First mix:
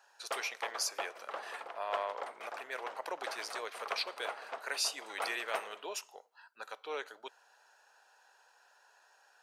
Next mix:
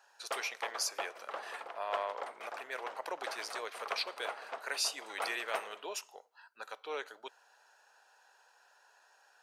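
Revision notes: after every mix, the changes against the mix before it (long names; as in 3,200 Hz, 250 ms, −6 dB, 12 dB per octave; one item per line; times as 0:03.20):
nothing changed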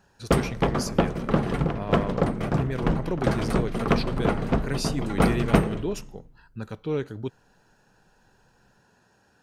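background +10.5 dB
master: remove high-pass filter 640 Hz 24 dB per octave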